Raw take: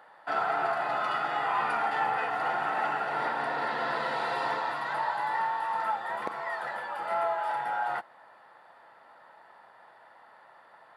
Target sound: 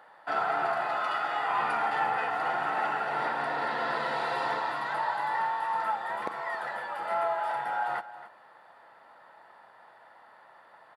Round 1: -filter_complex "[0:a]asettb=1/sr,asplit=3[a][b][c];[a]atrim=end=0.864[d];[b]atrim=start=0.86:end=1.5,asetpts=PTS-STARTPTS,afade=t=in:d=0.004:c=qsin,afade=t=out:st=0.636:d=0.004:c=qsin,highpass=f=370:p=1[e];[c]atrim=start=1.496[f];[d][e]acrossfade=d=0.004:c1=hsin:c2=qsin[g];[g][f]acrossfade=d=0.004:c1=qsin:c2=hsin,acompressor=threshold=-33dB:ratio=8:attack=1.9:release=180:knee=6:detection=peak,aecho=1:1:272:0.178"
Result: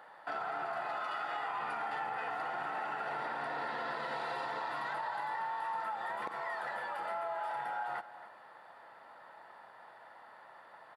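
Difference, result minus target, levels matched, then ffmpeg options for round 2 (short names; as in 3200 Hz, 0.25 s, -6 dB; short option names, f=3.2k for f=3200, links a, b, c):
compressor: peak gain reduction +11.5 dB
-filter_complex "[0:a]asettb=1/sr,asplit=3[a][b][c];[a]atrim=end=0.864[d];[b]atrim=start=0.86:end=1.5,asetpts=PTS-STARTPTS,afade=t=in:d=0.004:c=qsin,afade=t=out:st=0.636:d=0.004:c=qsin,highpass=f=370:p=1[e];[c]atrim=start=1.496[f];[d][e]acrossfade=d=0.004:c1=hsin:c2=qsin[g];[g][f]acrossfade=d=0.004:c1=qsin:c2=hsin,aecho=1:1:272:0.178"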